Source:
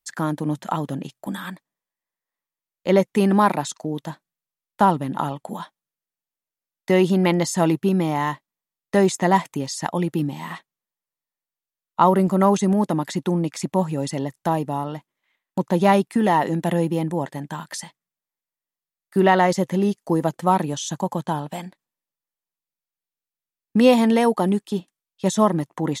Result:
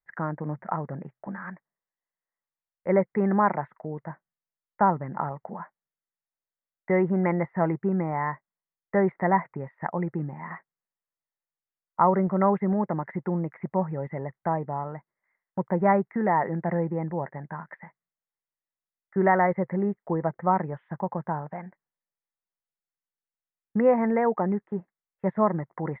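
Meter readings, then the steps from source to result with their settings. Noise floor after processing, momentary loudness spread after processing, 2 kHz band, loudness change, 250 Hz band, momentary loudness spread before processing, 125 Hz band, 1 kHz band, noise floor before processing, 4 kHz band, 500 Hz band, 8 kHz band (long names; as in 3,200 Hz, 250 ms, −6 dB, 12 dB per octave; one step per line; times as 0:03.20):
below −85 dBFS, 16 LU, −4.5 dB, −5.5 dB, −7.0 dB, 15 LU, −5.5 dB, −4.5 dB, below −85 dBFS, below −40 dB, −5.0 dB, below −40 dB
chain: Chebyshev low-pass filter 2,100 Hz, order 6
parametric band 280 Hz −11 dB 0.41 octaves
level −3.5 dB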